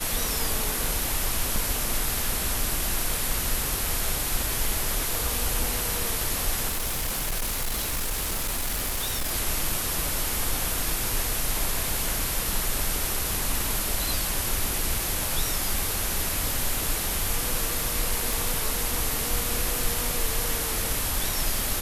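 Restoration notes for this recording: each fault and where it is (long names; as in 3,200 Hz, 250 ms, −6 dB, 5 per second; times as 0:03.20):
0:01.56: drop-out 2.4 ms
0:05.15: click
0:06.68–0:09.32: clipping −24 dBFS
0:18.33: click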